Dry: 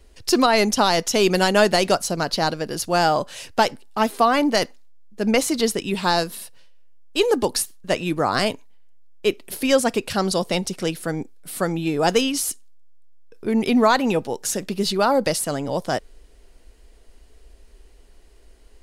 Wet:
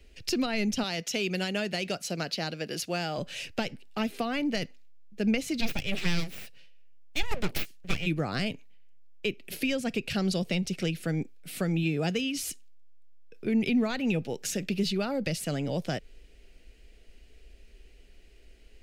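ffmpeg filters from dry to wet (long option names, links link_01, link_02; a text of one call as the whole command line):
ffmpeg -i in.wav -filter_complex "[0:a]asettb=1/sr,asplit=3[link_01][link_02][link_03];[link_01]atrim=end=0.834[link_04];[link_02]atrim=start=0.83:end=3.18,asetpts=PTS-STARTPTS,afade=type=in:duration=0.004:curve=qsin,afade=type=out:start_time=2.346:duration=0.004:curve=qsin,highpass=frequency=330:poles=1[link_05];[link_03]atrim=start=3.176[link_06];[link_04][link_05]acrossfade=duration=0.004:curve1=hsin:curve2=qsin[link_07];[link_07][link_06]acrossfade=duration=0.004:curve1=qsin:curve2=hsin,asplit=3[link_08][link_09][link_10];[link_08]afade=type=out:start_time=5.6:duration=0.02[link_11];[link_09]aeval=exprs='abs(val(0))':channel_layout=same,afade=type=in:start_time=5.6:duration=0.02,afade=type=out:start_time=8.05:duration=0.02[link_12];[link_10]afade=type=in:start_time=8.05:duration=0.02[link_13];[link_11][link_12][link_13]amix=inputs=3:normalize=0,asettb=1/sr,asplit=3[link_14][link_15][link_16];[link_14]atrim=end=11.834[link_17];[link_15]atrim=start=11.83:end=12.38,asetpts=PTS-STARTPTS,afade=type=in:duration=0.004:curve=qsin,afade=type=out:start_time=0.546:duration=0.004:curve=qsin,highpass=43[link_18];[link_16]atrim=start=12.376[link_19];[link_17][link_18]acrossfade=duration=0.004:curve1=hsin:curve2=qsin[link_20];[link_20][link_19]acrossfade=duration=0.004:curve1=qsin:curve2=hsin,equalizer=frequency=160:width_type=o:width=0.67:gain=5,equalizer=frequency=1000:width_type=o:width=0.67:gain=-12,equalizer=frequency=2500:width_type=o:width=0.67:gain=9,equalizer=frequency=10000:width_type=o:width=0.67:gain=-7,acrossover=split=220[link_21][link_22];[link_22]acompressor=threshold=-25dB:ratio=6[link_23];[link_21][link_23]amix=inputs=2:normalize=0,volume=-4dB" out.wav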